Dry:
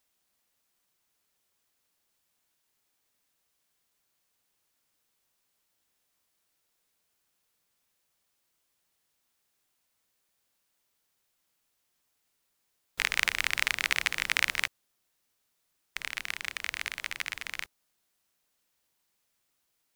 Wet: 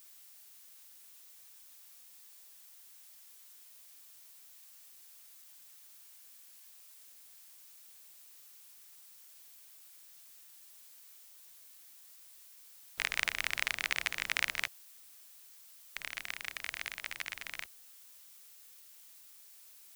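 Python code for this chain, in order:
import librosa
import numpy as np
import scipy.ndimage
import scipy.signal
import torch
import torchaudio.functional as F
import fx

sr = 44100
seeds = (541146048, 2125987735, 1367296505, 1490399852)

y = fx.peak_eq(x, sr, hz=660.0, db=4.5, octaves=0.22)
y = fx.dmg_noise_colour(y, sr, seeds[0], colour='blue', level_db=-51.0)
y = y * librosa.db_to_amplitude(-5.5)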